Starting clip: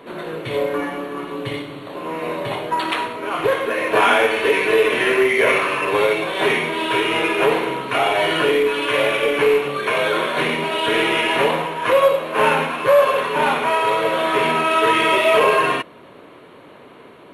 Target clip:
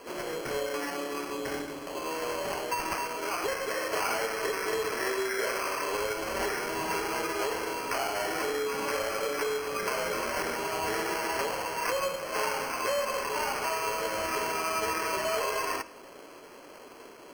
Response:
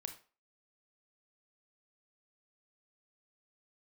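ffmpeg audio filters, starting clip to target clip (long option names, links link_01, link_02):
-filter_complex "[0:a]highpass=300,acrossover=split=1600|4600[link_01][link_02][link_03];[link_01]acompressor=threshold=-27dB:ratio=4[link_04];[link_02]acompressor=threshold=-33dB:ratio=4[link_05];[link_03]acompressor=threshold=-46dB:ratio=4[link_06];[link_04][link_05][link_06]amix=inputs=3:normalize=0,acrusher=samples=12:mix=1:aa=0.000001,asplit=2[link_07][link_08];[1:a]atrim=start_sample=2205,asetrate=23814,aresample=44100[link_09];[link_08][link_09]afir=irnorm=-1:irlink=0,volume=-8dB[link_10];[link_07][link_10]amix=inputs=2:normalize=0,volume=-7dB"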